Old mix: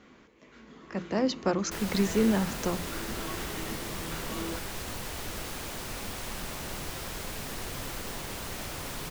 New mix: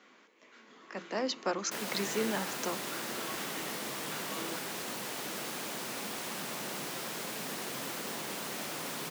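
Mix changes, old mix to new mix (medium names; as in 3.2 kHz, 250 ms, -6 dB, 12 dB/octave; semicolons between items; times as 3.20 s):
speech: add high-pass 740 Hz 6 dB/octave; master: add high-pass 170 Hz 24 dB/octave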